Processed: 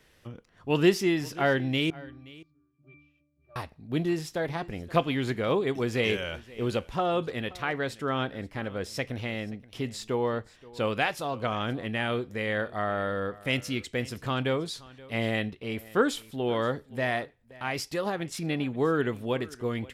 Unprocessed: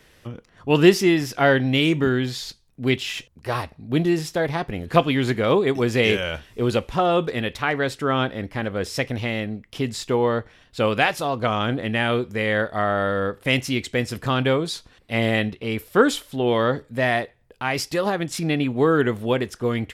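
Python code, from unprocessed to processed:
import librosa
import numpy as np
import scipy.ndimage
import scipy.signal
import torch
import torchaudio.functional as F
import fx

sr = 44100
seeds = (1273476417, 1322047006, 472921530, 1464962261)

y = fx.octave_resonator(x, sr, note='D', decay_s=0.72, at=(1.9, 3.56))
y = y + 10.0 ** (-21.0 / 20.0) * np.pad(y, (int(526 * sr / 1000.0), 0))[:len(y)]
y = y * librosa.db_to_amplitude(-7.5)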